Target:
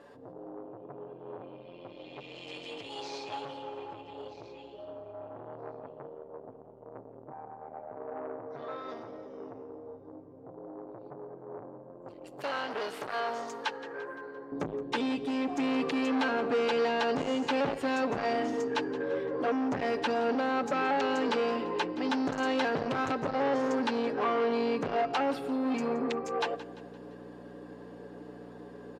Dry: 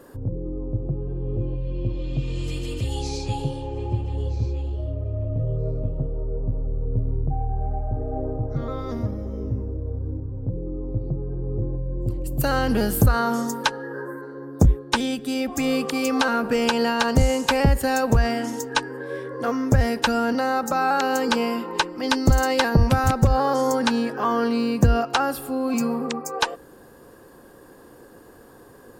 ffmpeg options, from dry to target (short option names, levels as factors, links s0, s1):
-af "equalizer=f=1300:t=o:w=1.1:g=-8.5,aecho=1:1:6.9:0.59,acontrast=85,aeval=exprs='val(0)+0.0282*(sin(2*PI*60*n/s)+sin(2*PI*2*60*n/s)/2+sin(2*PI*3*60*n/s)/3+sin(2*PI*4*60*n/s)/4+sin(2*PI*5*60*n/s)/5)':c=same,asoftclip=type=tanh:threshold=0.119,asetnsamples=n=441:p=0,asendcmd='14.52 highpass f 290',highpass=670,lowpass=2900,aecho=1:1:172|344|516|688:0.15|0.0703|0.0331|0.0155,volume=0.562"